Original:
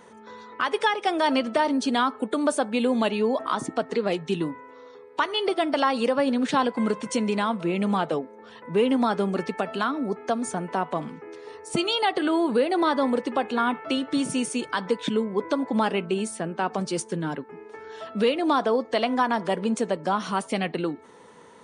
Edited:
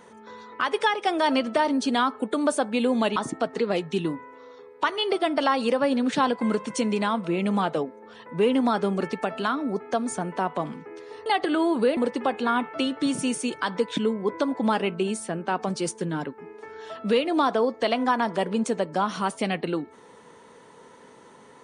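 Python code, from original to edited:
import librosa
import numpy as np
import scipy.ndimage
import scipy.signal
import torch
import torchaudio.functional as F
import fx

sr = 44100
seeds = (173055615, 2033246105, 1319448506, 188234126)

y = fx.edit(x, sr, fx.cut(start_s=3.16, length_s=0.36),
    fx.cut(start_s=11.62, length_s=0.37),
    fx.cut(start_s=12.7, length_s=0.38), tone=tone)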